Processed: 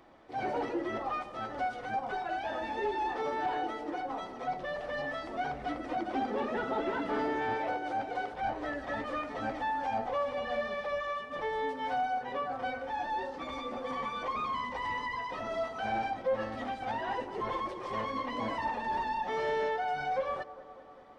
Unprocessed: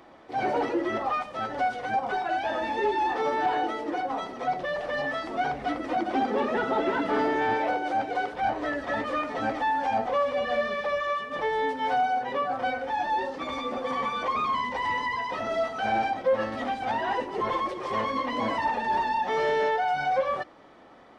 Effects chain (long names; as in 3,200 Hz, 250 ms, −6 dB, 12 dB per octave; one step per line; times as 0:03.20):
low-shelf EQ 72 Hz +9.5 dB
on a send: bucket-brigade delay 198 ms, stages 2,048, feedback 70%, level −17 dB
on the sum: level −7 dB